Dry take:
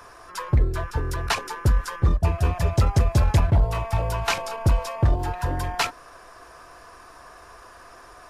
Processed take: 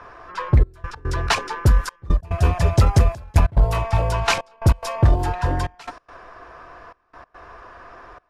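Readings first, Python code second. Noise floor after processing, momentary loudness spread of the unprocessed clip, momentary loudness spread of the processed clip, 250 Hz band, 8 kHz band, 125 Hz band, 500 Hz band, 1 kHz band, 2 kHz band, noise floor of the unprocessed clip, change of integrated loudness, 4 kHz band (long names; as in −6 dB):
−64 dBFS, 7 LU, 11 LU, +3.0 dB, +1.5 dB, +3.0 dB, +3.0 dB, +3.0 dB, +3.0 dB, −47 dBFS, +3.0 dB, +2.5 dB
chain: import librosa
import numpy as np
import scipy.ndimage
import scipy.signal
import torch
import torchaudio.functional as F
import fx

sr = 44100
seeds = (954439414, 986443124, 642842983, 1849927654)

y = fx.env_lowpass(x, sr, base_hz=2400.0, full_db=-17.0)
y = fx.step_gate(y, sr, bpm=143, pattern='xxxxxx..x.xx', floor_db=-24.0, edge_ms=4.5)
y = y * 10.0 ** (4.5 / 20.0)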